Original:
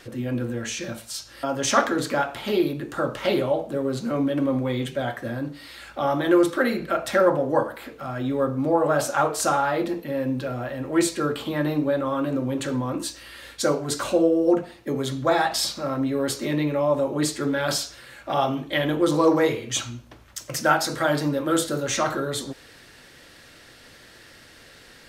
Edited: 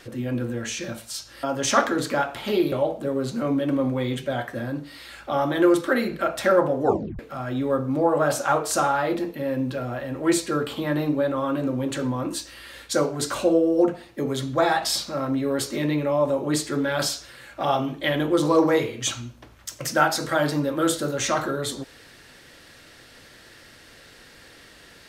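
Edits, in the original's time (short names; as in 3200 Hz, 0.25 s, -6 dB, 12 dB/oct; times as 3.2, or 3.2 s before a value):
2.72–3.41 cut
7.52 tape stop 0.36 s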